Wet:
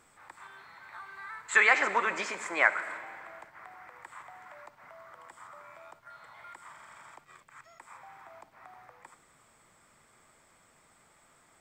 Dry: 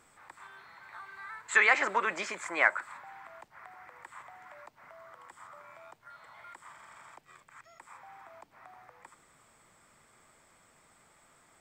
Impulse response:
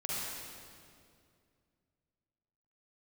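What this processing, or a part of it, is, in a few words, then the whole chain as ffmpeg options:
keyed gated reverb: -filter_complex "[0:a]asplit=3[a][b][c];[1:a]atrim=start_sample=2205[d];[b][d]afir=irnorm=-1:irlink=0[e];[c]apad=whole_len=511921[f];[e][f]sidechaingate=range=-33dB:threshold=-56dB:ratio=16:detection=peak,volume=-14.5dB[g];[a][g]amix=inputs=2:normalize=0"

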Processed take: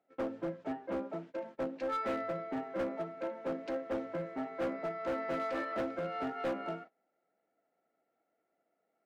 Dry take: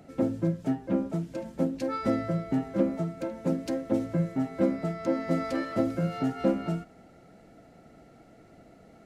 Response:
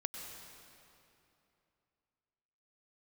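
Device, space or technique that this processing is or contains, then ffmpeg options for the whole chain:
walkie-talkie: -af "highpass=480,lowpass=2.3k,asoftclip=type=hard:threshold=-30.5dB,agate=range=-22dB:threshold=-49dB:ratio=16:detection=peak"

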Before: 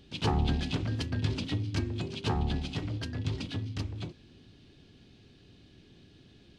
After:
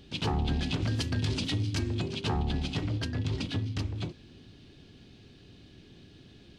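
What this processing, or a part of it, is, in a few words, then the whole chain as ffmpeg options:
clipper into limiter: -filter_complex "[0:a]asettb=1/sr,asplit=3[a][b][c];[a]atrim=end=0.824[d];[b]atrim=start=0.82:end=1.95,asetpts=PTS-STARTPTS,afade=t=in:d=0.004:c=qsin,afade=t=out:st=1.126:d=0.004:c=qsin,highshelf=f=4.2k:g=10[e];[c]atrim=start=1.946[f];[d][e]acrossfade=d=0.004:c1=hsin:c2=qsin[g];[g][f]acrossfade=d=0.004:c1=qsin:c2=hsin,asoftclip=type=hard:threshold=-18.5dB,alimiter=level_in=0.5dB:limit=-24dB:level=0:latency=1:release=60,volume=-0.5dB,volume=3.5dB"

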